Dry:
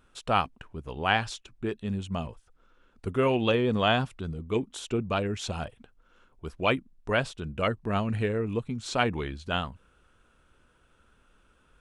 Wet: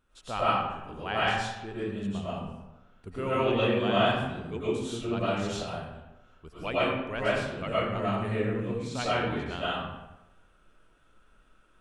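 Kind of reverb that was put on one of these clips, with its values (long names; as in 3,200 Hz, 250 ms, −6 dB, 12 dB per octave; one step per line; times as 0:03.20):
comb and all-pass reverb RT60 1 s, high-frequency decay 0.65×, pre-delay 70 ms, DRR −10 dB
level −10.5 dB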